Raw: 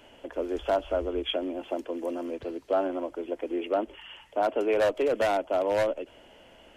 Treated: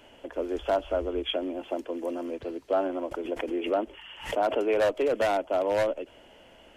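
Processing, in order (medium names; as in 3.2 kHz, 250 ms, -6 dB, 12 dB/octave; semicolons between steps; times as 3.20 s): 3.11–4.59 s: swell ahead of each attack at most 110 dB/s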